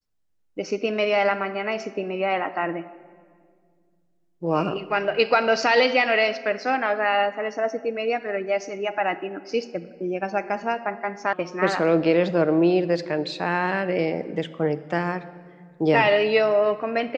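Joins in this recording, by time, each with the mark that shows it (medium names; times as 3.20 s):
11.33 s: sound stops dead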